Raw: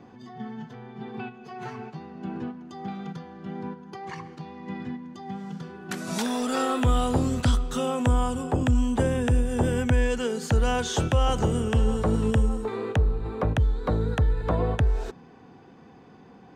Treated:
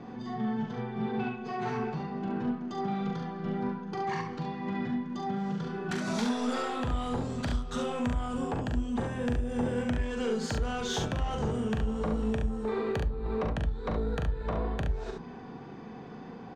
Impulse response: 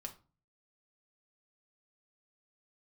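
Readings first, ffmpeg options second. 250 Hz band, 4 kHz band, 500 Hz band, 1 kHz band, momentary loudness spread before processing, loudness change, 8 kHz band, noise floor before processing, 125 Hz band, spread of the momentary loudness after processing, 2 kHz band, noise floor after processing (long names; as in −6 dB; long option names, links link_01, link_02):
−3.0 dB, −5.0 dB, −4.5 dB, −3.5 dB, 15 LU, −6.5 dB, −8.0 dB, −50 dBFS, −8.0 dB, 5 LU, −4.0 dB, −44 dBFS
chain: -filter_complex "[0:a]lowpass=5600,equalizer=frequency=2800:width_type=o:width=0.31:gain=-3,acompressor=threshold=-33dB:ratio=4,asoftclip=type=tanh:threshold=-29.5dB,aecho=1:1:41|70:0.531|0.531,asplit=2[link_01][link_02];[1:a]atrim=start_sample=2205[link_03];[link_02][link_03]afir=irnorm=-1:irlink=0,volume=0.5dB[link_04];[link_01][link_04]amix=inputs=2:normalize=0"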